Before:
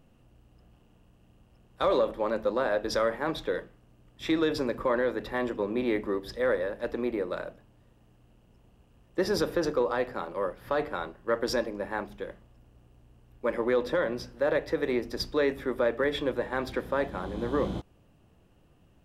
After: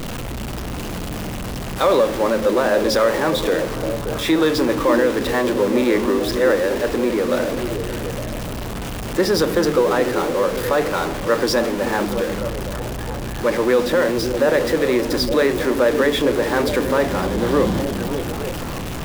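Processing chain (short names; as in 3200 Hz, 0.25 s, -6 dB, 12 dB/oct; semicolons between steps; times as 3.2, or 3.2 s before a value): zero-crossing step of -29.5 dBFS; on a send: delay with a stepping band-pass 0.289 s, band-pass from 210 Hz, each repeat 0.7 oct, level -3 dB; on the sum: gain +7.5 dB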